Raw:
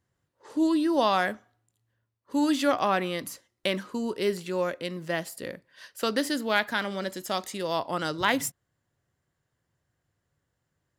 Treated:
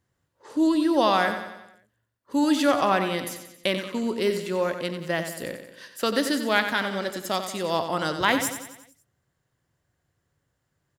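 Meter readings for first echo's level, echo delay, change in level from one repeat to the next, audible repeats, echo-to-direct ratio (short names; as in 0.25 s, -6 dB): -9.0 dB, 91 ms, -5.5 dB, 5, -7.5 dB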